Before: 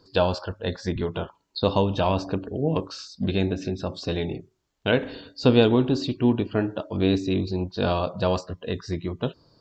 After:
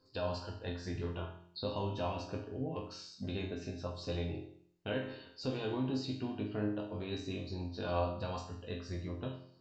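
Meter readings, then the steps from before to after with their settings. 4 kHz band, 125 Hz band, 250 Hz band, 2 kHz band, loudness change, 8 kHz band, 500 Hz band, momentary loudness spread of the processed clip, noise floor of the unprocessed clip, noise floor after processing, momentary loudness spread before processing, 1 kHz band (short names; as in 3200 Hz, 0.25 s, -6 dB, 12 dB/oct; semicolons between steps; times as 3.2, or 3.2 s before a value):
-13.5 dB, -12.5 dB, -14.5 dB, -13.5 dB, -14.0 dB, n/a, -14.5 dB, 8 LU, -69 dBFS, -63 dBFS, 10 LU, -12.5 dB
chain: notch 3400 Hz, Q 9.3; de-hum 58.34 Hz, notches 7; limiter -15.5 dBFS, peak gain reduction 9.5 dB; resonator bank F2 minor, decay 0.58 s; gain +5.5 dB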